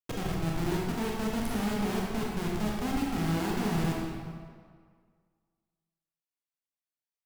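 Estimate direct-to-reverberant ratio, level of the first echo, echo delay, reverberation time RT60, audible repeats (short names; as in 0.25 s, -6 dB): -3.5 dB, none, none, 1.9 s, none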